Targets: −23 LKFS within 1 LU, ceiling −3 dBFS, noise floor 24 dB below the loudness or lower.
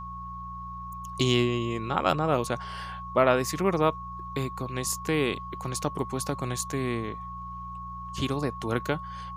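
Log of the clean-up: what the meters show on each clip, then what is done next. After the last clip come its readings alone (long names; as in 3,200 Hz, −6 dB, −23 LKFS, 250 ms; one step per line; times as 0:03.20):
mains hum 60 Hz; hum harmonics up to 180 Hz; level of the hum −40 dBFS; interfering tone 1,100 Hz; level of the tone −37 dBFS; integrated loudness −29.0 LKFS; sample peak −6.5 dBFS; target loudness −23.0 LKFS
→ hum removal 60 Hz, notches 3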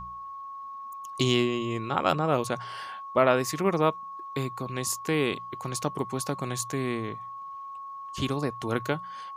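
mains hum none found; interfering tone 1,100 Hz; level of the tone −37 dBFS
→ notch filter 1,100 Hz, Q 30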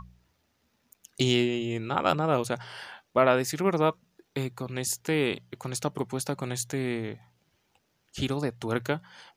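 interfering tone none found; integrated loudness −28.5 LKFS; sample peak −7.0 dBFS; target loudness −23.0 LKFS
→ level +5.5 dB
brickwall limiter −3 dBFS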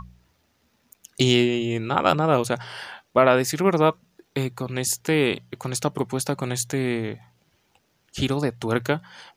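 integrated loudness −23.5 LKFS; sample peak −3.0 dBFS; background noise floor −68 dBFS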